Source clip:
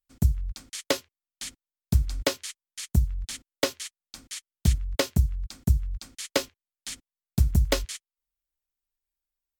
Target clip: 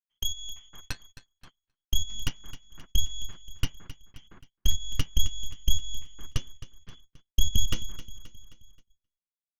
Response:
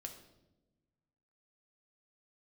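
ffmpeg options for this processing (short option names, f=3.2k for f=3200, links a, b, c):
-filter_complex "[0:a]asettb=1/sr,asplit=3[a][b][c];[a]atrim=end=6.284[d];[b]atrim=start=6.28:end=6.93,asetpts=PTS-STARTPTS,afade=t=in:d=0.004:c=qsin,afade=t=out:st=0.646:d=0.004:c=qsin,aeval=exprs='if(lt(val(0),0),0.447*val(0),val(0))':c=same[e];[c]atrim=start=6.926[f];[d][e]acrossfade=d=0.004:c1=hsin:c2=qsin[g];[g][f]acrossfade=d=0.004:c1=qsin:c2=hsin,acompressor=threshold=-48dB:ratio=1.5,lowpass=f=2.9k:t=q:w=0.5098,lowpass=f=2.9k:t=q:w=0.6013,lowpass=f=2.9k:t=q:w=0.9,lowpass=f=2.9k:t=q:w=2.563,afreqshift=-3400,asplit=3[h][i][j];[h]afade=t=out:st=0.81:d=0.02[k];[i]aeval=exprs='val(0)*sin(2*PI*1300*n/s)':c=same,afade=t=in:st=0.81:d=0.02,afade=t=out:st=1.42:d=0.02[l];[j]afade=t=in:st=1.42:d=0.02[m];[k][l][m]amix=inputs=3:normalize=0,aeval=exprs='0.119*(cos(1*acos(clip(val(0)/0.119,-1,1)))-cos(1*PI/2))+0.0168*(cos(3*acos(clip(val(0)/0.119,-1,1)))-cos(3*PI/2))+0.0299*(cos(6*acos(clip(val(0)/0.119,-1,1)))-cos(6*PI/2))':c=same,asubboost=boost=7:cutoff=240,aecho=1:1:264|528|792|1056|1320:0.188|0.0961|0.049|0.025|0.0127,agate=range=-22dB:threshold=-49dB:ratio=16:detection=peak"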